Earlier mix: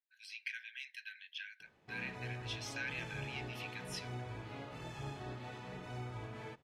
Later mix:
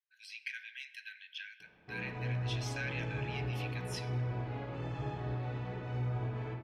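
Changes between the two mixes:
background: add head-to-tape spacing loss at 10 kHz 22 dB
reverb: on, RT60 2.0 s

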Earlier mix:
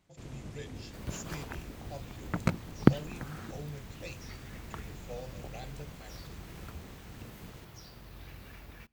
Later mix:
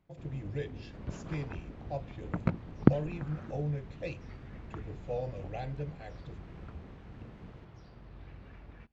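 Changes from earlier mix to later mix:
speech +9.5 dB
master: add head-to-tape spacing loss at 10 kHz 33 dB

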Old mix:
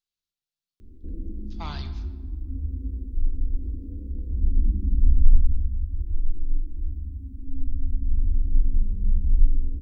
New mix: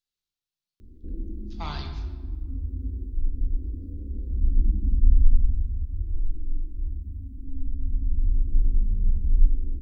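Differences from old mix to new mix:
speech: send +6.0 dB
background: send off

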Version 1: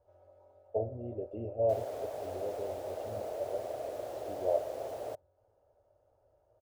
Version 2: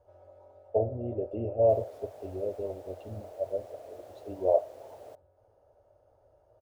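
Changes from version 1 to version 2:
speech +6.0 dB
background −8.5 dB

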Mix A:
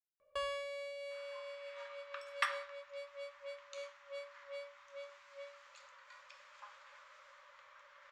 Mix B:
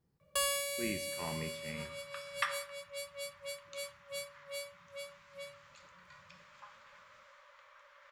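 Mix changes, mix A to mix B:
speech: unmuted
first sound: remove head-to-tape spacing loss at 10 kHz 31 dB
master: add low-shelf EQ 110 Hz +4.5 dB

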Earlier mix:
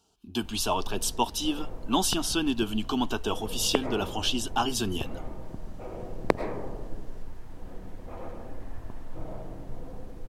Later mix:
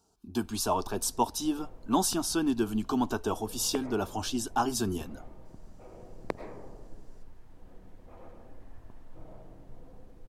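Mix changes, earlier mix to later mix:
speech: add parametric band 3,000 Hz −14.5 dB 0.68 octaves
background −10.5 dB

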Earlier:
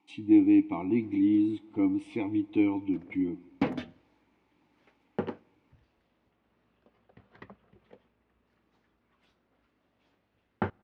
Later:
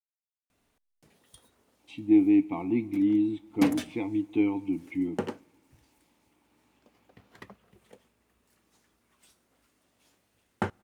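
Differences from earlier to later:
speech: entry +1.80 s
background: remove high-frequency loss of the air 300 metres

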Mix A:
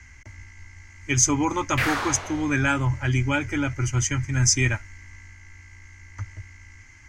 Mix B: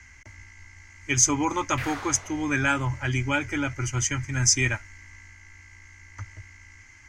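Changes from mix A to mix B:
speech: add low-shelf EQ 290 Hz −5.5 dB
background −10.0 dB

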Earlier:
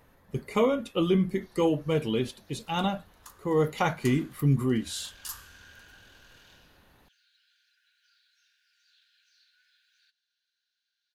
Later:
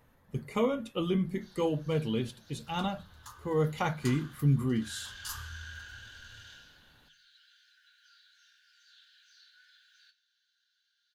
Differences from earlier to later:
speech −4.5 dB
first sound +5.5 dB
reverb: on, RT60 0.35 s

